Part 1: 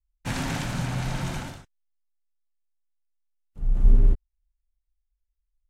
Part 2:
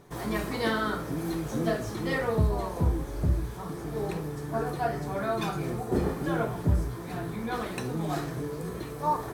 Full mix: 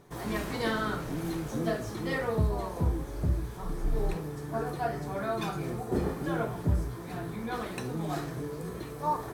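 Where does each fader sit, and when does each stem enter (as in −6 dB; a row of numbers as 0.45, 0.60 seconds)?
−14.0, −2.5 decibels; 0.00, 0.00 seconds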